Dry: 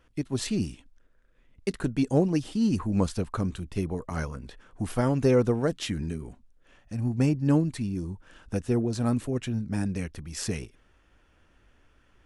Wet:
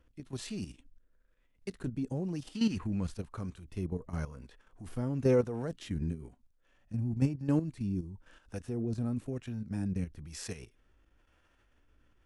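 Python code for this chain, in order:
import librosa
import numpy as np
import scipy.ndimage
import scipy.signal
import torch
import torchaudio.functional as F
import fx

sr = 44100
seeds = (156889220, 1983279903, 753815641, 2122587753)

y = fx.hpss(x, sr, part='percussive', gain_db=-8)
y = fx.peak_eq(y, sr, hz=2200.0, db=11.5, octaves=2.0, at=(2.54, 3.06), fade=0.02)
y = fx.level_steps(y, sr, step_db=11)
y = fx.harmonic_tremolo(y, sr, hz=1.0, depth_pct=50, crossover_hz=460.0)
y = y * 10.0 ** (1.5 / 20.0)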